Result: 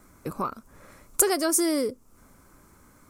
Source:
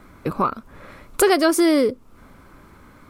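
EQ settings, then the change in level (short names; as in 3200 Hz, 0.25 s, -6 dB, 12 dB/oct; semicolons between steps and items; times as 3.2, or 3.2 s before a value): resonant high shelf 4900 Hz +10.5 dB, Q 1.5; -8.5 dB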